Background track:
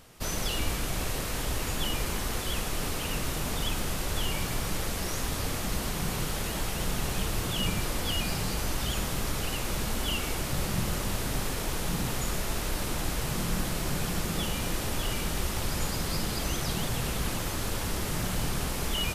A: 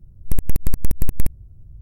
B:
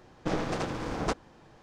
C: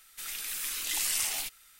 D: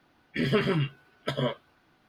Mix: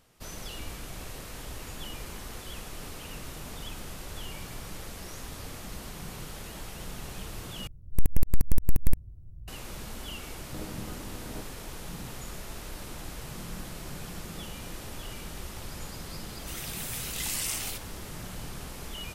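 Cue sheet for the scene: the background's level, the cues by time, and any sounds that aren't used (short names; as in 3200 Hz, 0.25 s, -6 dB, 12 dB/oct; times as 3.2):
background track -9.5 dB
7.67 replace with A -4 dB
10.27 add B -12 dB + chord vocoder minor triad, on G#3
16.29 add C -2.5 dB
not used: D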